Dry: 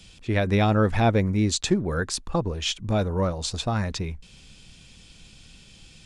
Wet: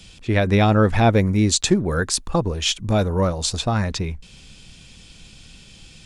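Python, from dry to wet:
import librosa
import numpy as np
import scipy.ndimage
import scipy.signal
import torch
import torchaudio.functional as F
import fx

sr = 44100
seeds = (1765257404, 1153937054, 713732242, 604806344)

y = fx.high_shelf(x, sr, hz=8700.0, db=8.5, at=(1.12, 3.59))
y = y * librosa.db_to_amplitude(4.5)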